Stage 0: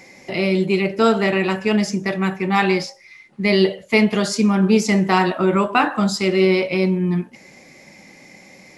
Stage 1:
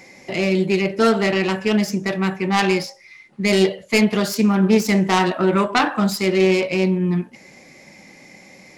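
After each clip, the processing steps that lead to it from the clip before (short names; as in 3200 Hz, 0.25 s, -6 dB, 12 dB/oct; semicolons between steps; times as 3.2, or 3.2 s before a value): self-modulated delay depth 0.18 ms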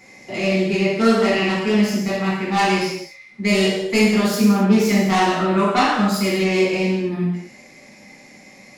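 non-linear reverb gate 0.3 s falling, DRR -7 dB; gain -7 dB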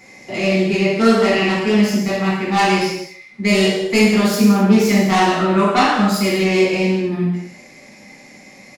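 echo 0.158 s -18.5 dB; gain +2.5 dB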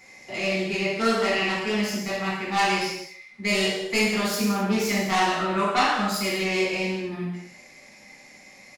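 bell 220 Hz -8 dB 2.6 oct; gain -4.5 dB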